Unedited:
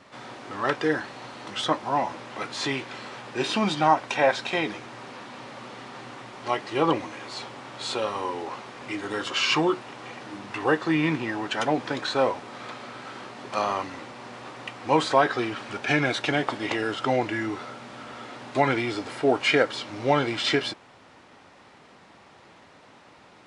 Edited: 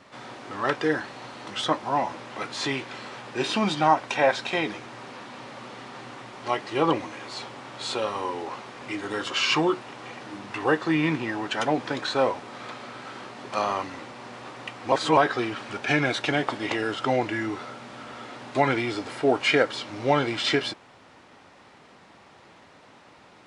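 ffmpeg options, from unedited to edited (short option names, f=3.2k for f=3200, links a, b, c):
-filter_complex "[0:a]asplit=3[a][b][c];[a]atrim=end=14.922[d];[b]atrim=start=14.918:end=15.172,asetpts=PTS-STARTPTS,areverse[e];[c]atrim=start=15.168[f];[d][e]acrossfade=d=0.004:c1=hsin:c2=hsin[g];[g][f]acrossfade=d=0.004:c1=hsin:c2=hsin"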